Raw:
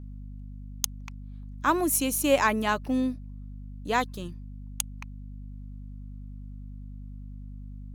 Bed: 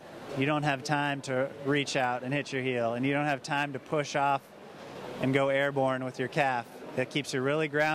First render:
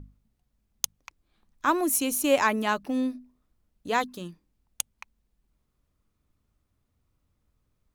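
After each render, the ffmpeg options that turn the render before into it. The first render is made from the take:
ffmpeg -i in.wav -af "bandreject=frequency=50:width_type=h:width=6,bandreject=frequency=100:width_type=h:width=6,bandreject=frequency=150:width_type=h:width=6,bandreject=frequency=200:width_type=h:width=6,bandreject=frequency=250:width_type=h:width=6" out.wav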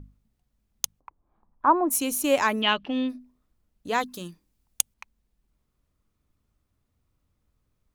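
ffmpeg -i in.wav -filter_complex "[0:a]asplit=3[link_01][link_02][link_03];[link_01]afade=type=out:start_time=0.99:duration=0.02[link_04];[link_02]lowpass=frequency=950:width_type=q:width=2.5,afade=type=in:start_time=0.99:duration=0.02,afade=type=out:start_time=1.9:duration=0.02[link_05];[link_03]afade=type=in:start_time=1.9:duration=0.02[link_06];[link_04][link_05][link_06]amix=inputs=3:normalize=0,asplit=3[link_07][link_08][link_09];[link_07]afade=type=out:start_time=2.6:duration=0.02[link_10];[link_08]lowpass=frequency=3100:width_type=q:width=6.4,afade=type=in:start_time=2.6:duration=0.02,afade=type=out:start_time=3.08:duration=0.02[link_11];[link_09]afade=type=in:start_time=3.08:duration=0.02[link_12];[link_10][link_11][link_12]amix=inputs=3:normalize=0,asettb=1/sr,asplit=3[link_13][link_14][link_15];[link_13]atrim=end=4.064[link_16];[link_14]atrim=start=4.06:end=4.94,asetpts=PTS-STARTPTS,afade=type=in:duration=0.004:curve=qsin,afade=type=out:start_time=0.876:duration=0.004:curve=qsin,highshelf=frequency=3800:gain=8[link_17];[link_15]atrim=start=4.936[link_18];[link_16][link_17]acrossfade=duration=0.004:curve1=hsin:curve2=qsin[link_19];[link_19][link_18]acrossfade=duration=0.004:curve1=qsin:curve2=hsin" out.wav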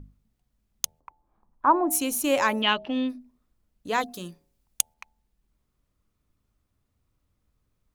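ffmpeg -i in.wav -af "bandreject=frequency=79.19:width_type=h:width=4,bandreject=frequency=158.38:width_type=h:width=4,bandreject=frequency=237.57:width_type=h:width=4,bandreject=frequency=316.76:width_type=h:width=4,bandreject=frequency=395.95:width_type=h:width=4,bandreject=frequency=475.14:width_type=h:width=4,bandreject=frequency=554.33:width_type=h:width=4,bandreject=frequency=633.52:width_type=h:width=4,bandreject=frequency=712.71:width_type=h:width=4,bandreject=frequency=791.9:width_type=h:width=4,bandreject=frequency=871.09:width_type=h:width=4" out.wav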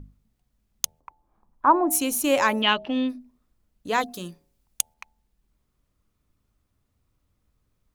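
ffmpeg -i in.wav -af "volume=2dB,alimiter=limit=-3dB:level=0:latency=1" out.wav

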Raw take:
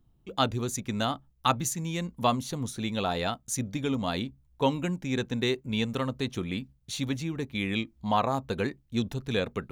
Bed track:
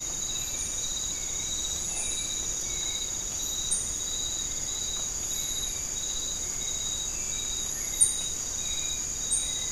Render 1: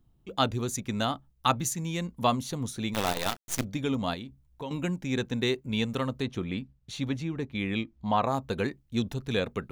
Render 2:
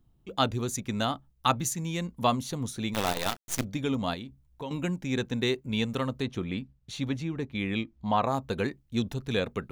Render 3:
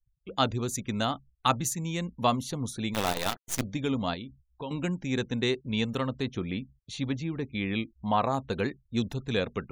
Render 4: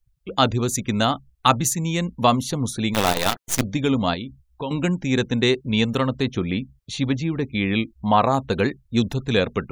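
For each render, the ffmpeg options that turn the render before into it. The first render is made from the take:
ffmpeg -i in.wav -filter_complex "[0:a]asplit=3[link_01][link_02][link_03];[link_01]afade=type=out:start_time=2.93:duration=0.02[link_04];[link_02]acrusher=bits=5:dc=4:mix=0:aa=0.000001,afade=type=in:start_time=2.93:duration=0.02,afade=type=out:start_time=3.63:duration=0.02[link_05];[link_03]afade=type=in:start_time=3.63:duration=0.02[link_06];[link_04][link_05][link_06]amix=inputs=3:normalize=0,asettb=1/sr,asplit=3[link_07][link_08][link_09];[link_07]atrim=end=4.144[link_10];[link_08]atrim=start=4.14:end=4.71,asetpts=PTS-STARTPTS,afade=type=in:duration=0.004:curve=qsin,afade=type=out:start_time=0.566:duration=0.004:curve=qsin,acompressor=threshold=-39dB:ratio=2.5:attack=3.2:release=140:knee=1:detection=peak[link_11];[link_09]atrim=start=4.706[link_12];[link_10][link_11]acrossfade=duration=0.004:curve1=hsin:curve2=qsin[link_13];[link_13][link_12]acrossfade=duration=0.004:curve1=qsin:curve2=hsin,asettb=1/sr,asplit=3[link_14][link_15][link_16];[link_14]atrim=end=6.224[link_17];[link_15]atrim=start=6.22:end=8.24,asetpts=PTS-STARTPTS,afade=type=in:duration=0.004:curve=qsin,afade=type=out:start_time=2.016:duration=0.004:curve=qsin,lowpass=frequency=3100:poles=1[link_18];[link_16]atrim=start=8.236[link_19];[link_17][link_18]acrossfade=duration=0.004:curve1=hsin:curve2=qsin[link_20];[link_20][link_19]acrossfade=duration=0.004:curve1=qsin:curve2=hsin" out.wav
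ffmpeg -i in.wav -af anull out.wav
ffmpeg -i in.wav -af "agate=range=-6dB:threshold=-56dB:ratio=16:detection=peak,afftfilt=real='re*gte(hypot(re,im),0.00282)':imag='im*gte(hypot(re,im),0.00282)':win_size=1024:overlap=0.75" out.wav
ffmpeg -i in.wav -af "volume=8.5dB,alimiter=limit=-3dB:level=0:latency=1" out.wav

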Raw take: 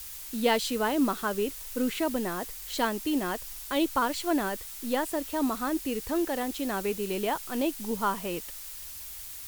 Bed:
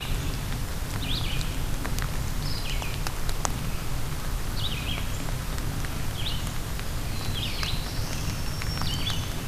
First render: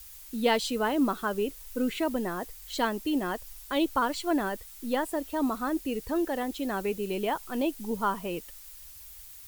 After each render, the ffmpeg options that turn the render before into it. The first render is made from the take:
ffmpeg -i in.wav -af "afftdn=noise_reduction=8:noise_floor=-42" out.wav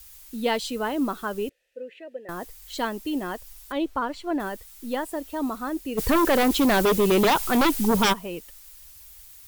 ffmpeg -i in.wav -filter_complex "[0:a]asettb=1/sr,asplit=3[link_01][link_02][link_03];[link_01]atrim=end=1.494[link_04];[link_02]atrim=start=1.49:end=2.29,asetpts=PTS-STARTPTS,afade=type=in:duration=0.004:curve=qsin,afade=type=out:start_time=0.796:duration=0.004:curve=qsin,asplit=3[link_05][link_06][link_07];[link_05]bandpass=frequency=530:width_type=q:width=8,volume=0dB[link_08];[link_06]bandpass=frequency=1840:width_type=q:width=8,volume=-6dB[link_09];[link_07]bandpass=frequency=2480:width_type=q:width=8,volume=-9dB[link_10];[link_08][link_09][link_10]amix=inputs=3:normalize=0[link_11];[link_03]atrim=start=2.286[link_12];[link_04][link_11]acrossfade=duration=0.004:curve1=hsin:curve2=qsin[link_13];[link_13][link_12]acrossfade=duration=0.004:curve1=qsin:curve2=hsin,asettb=1/sr,asplit=3[link_14][link_15][link_16];[link_14]atrim=end=3.724[link_17];[link_15]atrim=start=3.72:end=4.4,asetpts=PTS-STARTPTS,afade=type=in:duration=0.004:curve=qsin,afade=type=out:start_time=0.676:duration=0.004:curve=qsin,lowpass=frequency=2300:poles=1[link_18];[link_16]atrim=start=4.396[link_19];[link_17][link_18]acrossfade=duration=0.004:curve1=hsin:curve2=qsin[link_20];[link_20][link_19]acrossfade=duration=0.004:curve1=qsin:curve2=hsin,asplit=3[link_21][link_22][link_23];[link_21]afade=type=out:start_time=5.97:duration=0.02[link_24];[link_22]aeval=exprs='0.168*sin(PI/2*3.98*val(0)/0.168)':channel_layout=same,afade=type=in:start_time=5.97:duration=0.02,afade=type=out:start_time=8.12:duration=0.02[link_25];[link_23]afade=type=in:start_time=8.12:duration=0.02[link_26];[link_24][link_25][link_26]amix=inputs=3:normalize=0" out.wav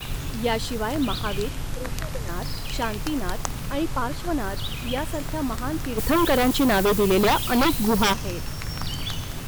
ffmpeg -i in.wav -i bed.wav -filter_complex "[1:a]volume=-1.5dB[link_01];[0:a][link_01]amix=inputs=2:normalize=0" out.wav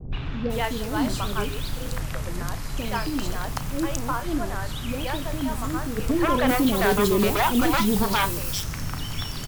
ffmpeg -i in.wav -filter_complex "[0:a]asplit=2[link_01][link_02];[link_02]adelay=34,volume=-12dB[link_03];[link_01][link_03]amix=inputs=2:normalize=0,acrossover=split=520|3700[link_04][link_05][link_06];[link_05]adelay=120[link_07];[link_06]adelay=500[link_08];[link_04][link_07][link_08]amix=inputs=3:normalize=0" out.wav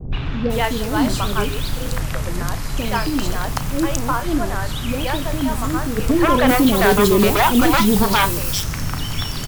ffmpeg -i in.wav -af "volume=6.5dB" out.wav

